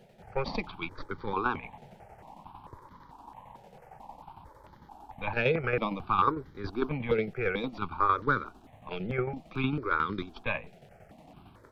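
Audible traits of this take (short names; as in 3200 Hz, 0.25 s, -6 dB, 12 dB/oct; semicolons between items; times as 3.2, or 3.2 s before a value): tremolo saw down 11 Hz, depth 60%; notches that jump at a steady rate 4.5 Hz 290–2600 Hz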